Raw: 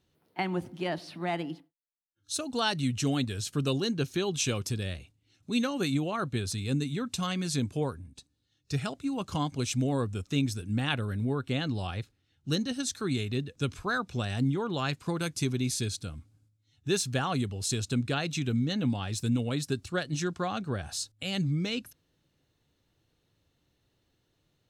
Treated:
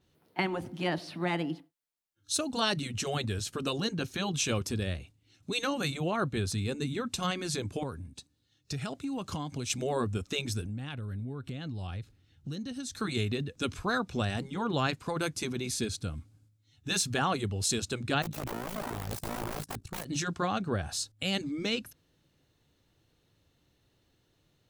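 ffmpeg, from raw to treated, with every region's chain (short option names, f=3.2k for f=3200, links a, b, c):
-filter_complex "[0:a]asettb=1/sr,asplit=3[a][b][c];[a]atrim=end=7.834[d];[b]atrim=start=7.83:end=9.7,asetpts=PTS-STARTPTS,afade=t=in:d=0.004:c=qsin,afade=t=out:st=1.866:d=0.004:c=qsin,highpass=61,acompressor=threshold=-34dB:ratio=10:attack=3.2:release=140:knee=1:detection=peak[e];[c]atrim=start=9.696[f];[d][e]acrossfade=d=0.004:c1=hsin:c2=qsin[g];[g][f]acrossfade=d=0.004:c1=qsin:c2=hsin,asettb=1/sr,asplit=3[h][i][j];[h]atrim=end=10.654[k];[i]atrim=start=10.65:end=12.99,asetpts=PTS-STARTPTS,afade=t=in:d=0.004:c=qsin,afade=t=out:st=2.336:d=0.004:c=qsin,lowshelf=f=210:g=8.5,acompressor=threshold=-39dB:ratio=5:attack=3.2:release=140:knee=1:detection=peak[l];[j]atrim=start=12.986[m];[k][l]acrossfade=d=0.004:c1=hsin:c2=qsin[n];[n][m]acrossfade=d=0.004:c1=qsin:c2=hsin,asettb=1/sr,asplit=3[o][p][q];[o]atrim=end=18.224[r];[p]atrim=start=18.22:end=20.06,asetpts=PTS-STARTPTS,afade=t=in:d=0.004:c=qsin,afade=t=out:st=1.836:d=0.004:c=qsin,aeval=exprs='(mod(26.6*val(0)+1,2)-1)/26.6':c=same,equalizer=f=4k:w=0.36:g=-8.5,tremolo=f=55:d=0.788[s];[q]atrim=start=20.056[t];[r][s]acrossfade=d=0.004:c1=hsin:c2=qsin[u];[u][t]acrossfade=d=0.004:c1=qsin:c2=hsin,afftfilt=real='re*lt(hypot(re,im),0.251)':imag='im*lt(hypot(re,im),0.251)':win_size=1024:overlap=0.75,adynamicequalizer=threshold=0.00447:dfrequency=2200:dqfactor=0.7:tfrequency=2200:tqfactor=0.7:attack=5:release=100:ratio=0.375:range=2.5:mode=cutabove:tftype=highshelf,volume=3dB"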